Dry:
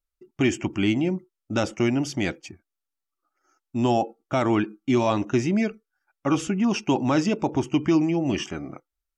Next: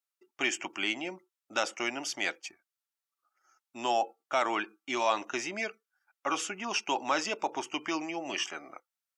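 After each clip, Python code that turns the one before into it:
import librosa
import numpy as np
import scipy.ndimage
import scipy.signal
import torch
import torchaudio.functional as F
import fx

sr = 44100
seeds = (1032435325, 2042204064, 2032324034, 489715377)

y = scipy.signal.sosfilt(scipy.signal.butter(2, 780.0, 'highpass', fs=sr, output='sos'), x)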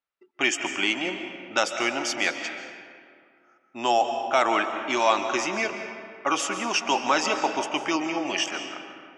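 y = fx.env_lowpass(x, sr, base_hz=2500.0, full_db=-29.0)
y = fx.rev_freeverb(y, sr, rt60_s=2.2, hf_ratio=0.6, predelay_ms=105, drr_db=6.5)
y = F.gain(torch.from_numpy(y), 6.5).numpy()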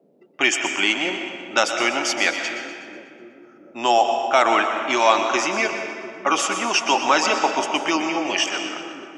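y = fx.low_shelf(x, sr, hz=160.0, db=-8.0)
y = fx.echo_split(y, sr, split_hz=440.0, low_ms=697, high_ms=123, feedback_pct=52, wet_db=-11)
y = fx.dmg_noise_band(y, sr, seeds[0], low_hz=170.0, high_hz=580.0, level_db=-64.0)
y = F.gain(torch.from_numpy(y), 5.0).numpy()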